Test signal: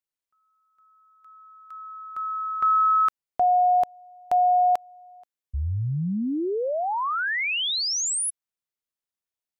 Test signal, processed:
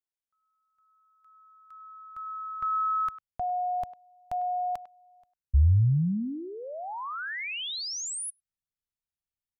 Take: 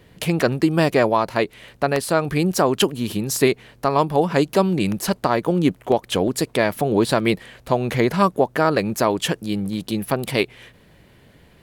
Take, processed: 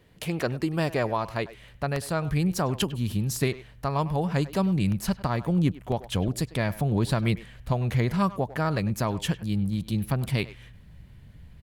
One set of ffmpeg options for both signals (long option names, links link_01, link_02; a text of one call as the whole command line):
ffmpeg -i in.wav -filter_complex "[0:a]asubboost=boost=9.5:cutoff=130,asplit=2[link_01][link_02];[link_02]adelay=100,highpass=300,lowpass=3400,asoftclip=type=hard:threshold=-11.5dB,volume=-15dB[link_03];[link_01][link_03]amix=inputs=2:normalize=0,volume=-8.5dB" out.wav